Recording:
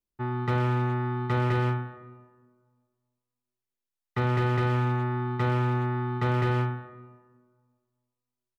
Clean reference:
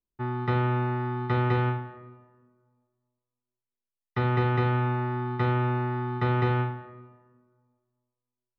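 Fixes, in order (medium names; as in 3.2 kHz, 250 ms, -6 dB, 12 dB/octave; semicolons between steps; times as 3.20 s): clip repair -20.5 dBFS; inverse comb 121 ms -15.5 dB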